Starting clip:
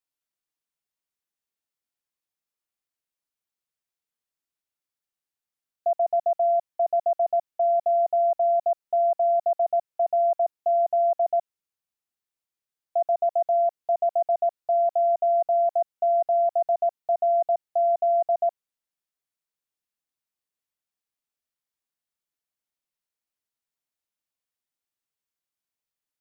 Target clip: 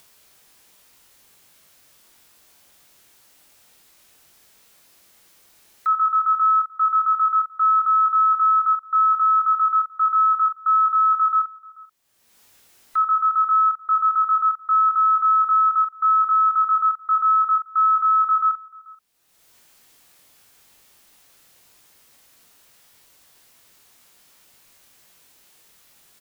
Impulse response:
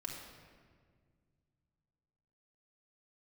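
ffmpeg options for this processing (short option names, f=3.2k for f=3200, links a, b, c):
-filter_complex "[0:a]afftfilt=real='real(if(between(b,1,1012),(2*floor((b-1)/92)+1)*92-b,b),0)':imag='imag(if(between(b,1,1012),(2*floor((b-1)/92)+1)*92-b,b),0)*if(between(b,1,1012),-1,1)':win_size=2048:overlap=0.75,asplit=2[a][b];[b]aecho=0:1:21|62:0.708|0.376[c];[a][c]amix=inputs=2:normalize=0,acompressor=mode=upward:threshold=-32dB:ratio=2.5,asplit=2[d][e];[e]aecho=0:1:436:0.0631[f];[d][f]amix=inputs=2:normalize=0,volume=1.5dB"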